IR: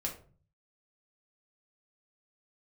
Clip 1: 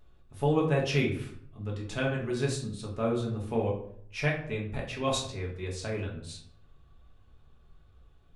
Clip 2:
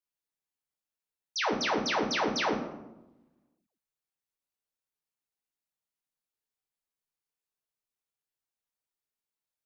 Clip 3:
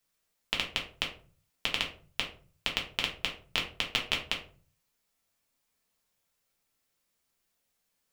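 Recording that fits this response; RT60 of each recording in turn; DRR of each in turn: 3; 0.65 s, 1.0 s, 0.40 s; -2.5 dB, -0.5 dB, -1.0 dB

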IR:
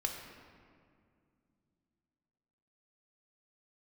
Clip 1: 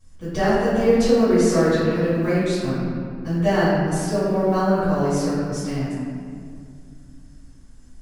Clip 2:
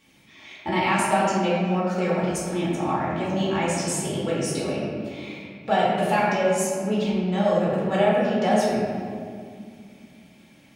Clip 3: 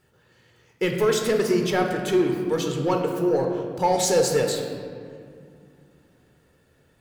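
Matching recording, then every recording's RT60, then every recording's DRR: 3; 2.2 s, 2.2 s, 2.2 s; -15.5 dB, -8.0 dB, 2.0 dB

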